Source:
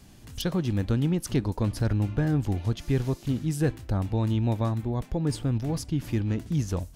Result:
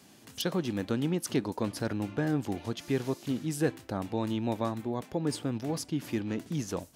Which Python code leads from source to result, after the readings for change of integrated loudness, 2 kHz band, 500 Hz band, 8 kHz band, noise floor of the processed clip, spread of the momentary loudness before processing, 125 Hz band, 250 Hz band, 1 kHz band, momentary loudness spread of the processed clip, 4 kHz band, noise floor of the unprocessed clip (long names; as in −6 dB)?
−5.0 dB, 0.0 dB, −0.5 dB, 0.0 dB, −56 dBFS, 4 LU, −10.5 dB, −3.0 dB, 0.0 dB, 4 LU, 0.0 dB, −49 dBFS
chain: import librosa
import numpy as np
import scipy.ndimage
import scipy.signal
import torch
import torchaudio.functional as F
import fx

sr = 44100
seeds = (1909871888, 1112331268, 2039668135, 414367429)

y = scipy.signal.sosfilt(scipy.signal.butter(2, 230.0, 'highpass', fs=sr, output='sos'), x)